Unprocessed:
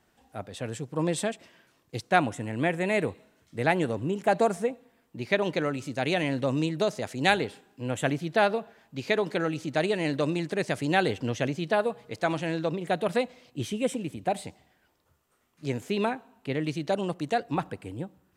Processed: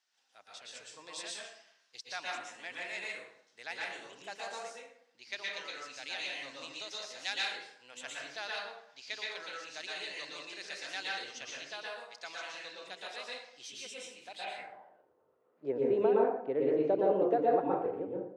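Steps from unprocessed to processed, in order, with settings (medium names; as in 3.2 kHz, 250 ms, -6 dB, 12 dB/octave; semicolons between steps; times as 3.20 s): plate-style reverb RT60 0.7 s, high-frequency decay 0.6×, pre-delay 105 ms, DRR -4 dB; overdrive pedal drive 10 dB, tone 2.3 kHz, clips at -5 dBFS; band-pass sweep 5.4 kHz -> 440 Hz, 14.30–15.06 s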